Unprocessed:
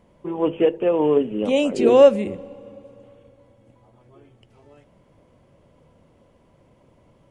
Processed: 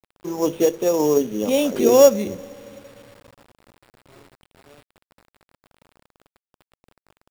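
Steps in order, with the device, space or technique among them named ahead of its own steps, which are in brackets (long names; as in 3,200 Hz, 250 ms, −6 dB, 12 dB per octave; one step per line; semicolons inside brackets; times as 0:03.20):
early 8-bit sampler (sample-rate reduction 6,200 Hz, jitter 0%; bit reduction 8 bits)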